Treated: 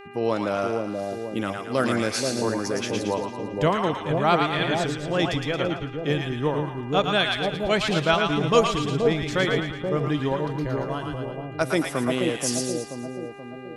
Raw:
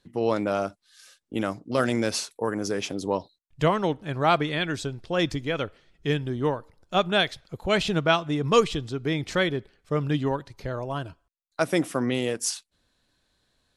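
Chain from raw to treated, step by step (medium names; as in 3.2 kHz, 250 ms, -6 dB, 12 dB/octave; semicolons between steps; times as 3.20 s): two-band feedback delay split 770 Hz, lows 480 ms, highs 112 ms, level -3 dB; mains buzz 400 Hz, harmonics 7, -44 dBFS -4 dB/octave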